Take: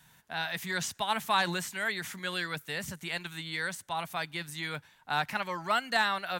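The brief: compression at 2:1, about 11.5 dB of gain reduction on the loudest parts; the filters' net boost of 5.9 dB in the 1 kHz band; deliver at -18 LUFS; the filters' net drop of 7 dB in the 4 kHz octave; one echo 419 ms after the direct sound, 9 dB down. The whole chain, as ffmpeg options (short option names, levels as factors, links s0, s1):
-af "equalizer=f=1000:t=o:g=8,equalizer=f=4000:t=o:g=-9,acompressor=threshold=0.01:ratio=2,aecho=1:1:419:0.355,volume=10"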